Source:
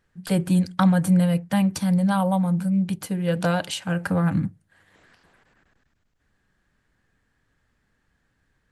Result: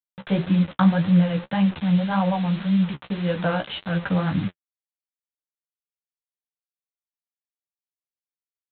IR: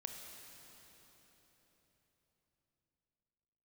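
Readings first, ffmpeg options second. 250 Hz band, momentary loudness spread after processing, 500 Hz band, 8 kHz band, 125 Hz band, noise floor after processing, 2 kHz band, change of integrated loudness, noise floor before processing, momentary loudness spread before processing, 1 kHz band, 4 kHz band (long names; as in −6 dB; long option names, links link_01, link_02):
0.0 dB, 8 LU, −0.5 dB, below −40 dB, 0.0 dB, below −85 dBFS, +0.5 dB, 0.0 dB, −71 dBFS, 7 LU, 0.0 dB, +0.5 dB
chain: -af "aresample=8000,acrusher=bits=5:mix=0:aa=0.000001,aresample=44100,flanger=delay=9.3:depth=7.3:regen=23:speed=1.8:shape=triangular,volume=3dB"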